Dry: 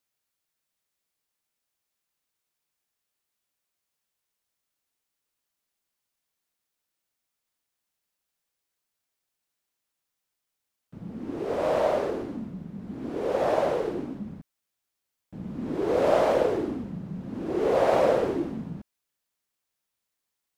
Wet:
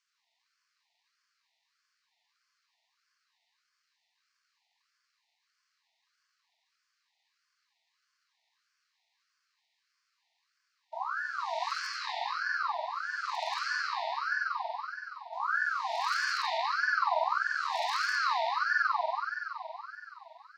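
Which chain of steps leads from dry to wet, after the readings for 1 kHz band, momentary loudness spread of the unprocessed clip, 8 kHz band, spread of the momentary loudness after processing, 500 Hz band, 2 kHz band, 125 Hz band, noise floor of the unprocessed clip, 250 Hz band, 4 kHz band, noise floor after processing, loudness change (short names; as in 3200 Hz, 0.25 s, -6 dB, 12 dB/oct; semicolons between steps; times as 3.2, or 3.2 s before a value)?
+2.0 dB, 17 LU, n/a, 13 LU, -16.0 dB, +11.0 dB, under -40 dB, -84 dBFS, under -40 dB, +8.0 dB, -80 dBFS, -5.0 dB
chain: LPF 5000 Hz 24 dB/oct; in parallel at 0 dB: compressor 5:1, threshold -31 dBFS, peak gain reduction 13.5 dB; on the sum: hard clip -14 dBFS, distortion -21 dB; brick-wall FIR band-stop 160–2600 Hz; on a send: narrowing echo 1.076 s, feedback 72%, band-pass 1300 Hz, level -22.5 dB; on the sum: spring tank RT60 3.6 s, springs 47 ms, chirp 35 ms, DRR -6 dB; ring modulator with a swept carrier 1200 Hz, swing 35%, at 1.6 Hz; gain +6 dB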